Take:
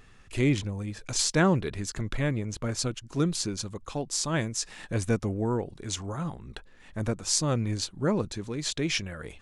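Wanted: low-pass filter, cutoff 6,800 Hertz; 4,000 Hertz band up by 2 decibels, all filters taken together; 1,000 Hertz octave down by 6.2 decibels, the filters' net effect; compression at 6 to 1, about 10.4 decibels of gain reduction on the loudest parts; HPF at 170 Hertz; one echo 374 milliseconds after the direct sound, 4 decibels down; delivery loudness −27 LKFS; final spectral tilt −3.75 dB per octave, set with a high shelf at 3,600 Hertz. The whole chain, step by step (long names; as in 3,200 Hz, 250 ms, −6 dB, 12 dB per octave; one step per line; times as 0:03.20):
high-pass filter 170 Hz
low-pass filter 6,800 Hz
parametric band 1,000 Hz −8.5 dB
high-shelf EQ 3,600 Hz −4.5 dB
parametric band 4,000 Hz +7 dB
downward compressor 6 to 1, threshold −32 dBFS
single-tap delay 374 ms −4 dB
level +8.5 dB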